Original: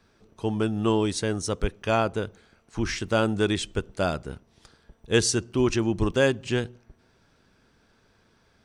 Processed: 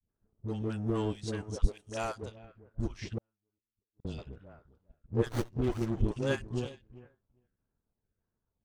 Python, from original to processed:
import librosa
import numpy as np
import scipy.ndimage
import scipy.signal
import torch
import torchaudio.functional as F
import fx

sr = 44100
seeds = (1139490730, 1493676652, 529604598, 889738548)

y = fx.low_shelf(x, sr, hz=140.0, db=11.0)
y = fx.echo_feedback(y, sr, ms=399, feedback_pct=17, wet_db=-13)
y = fx.filter_lfo_notch(y, sr, shape='saw_down', hz=1.6, low_hz=740.0, high_hz=4300.0, q=1.4)
y = fx.bass_treble(y, sr, bass_db=-10, treble_db=13, at=(1.67, 2.22))
y = fx.dispersion(y, sr, late='highs', ms=101.0, hz=500.0)
y = fx.spec_box(y, sr, start_s=3.59, length_s=0.59, low_hz=500.0, high_hz=2500.0, gain_db=-20)
y = fx.gate_flip(y, sr, shuts_db=-23.0, range_db=-39, at=(3.18, 4.05))
y = fx.power_curve(y, sr, exponent=1.4)
y = fx.env_lowpass(y, sr, base_hz=1400.0, full_db=-22.5)
y = fx.running_max(y, sr, window=17, at=(5.26, 6.02))
y = y * librosa.db_to_amplitude(-6.5)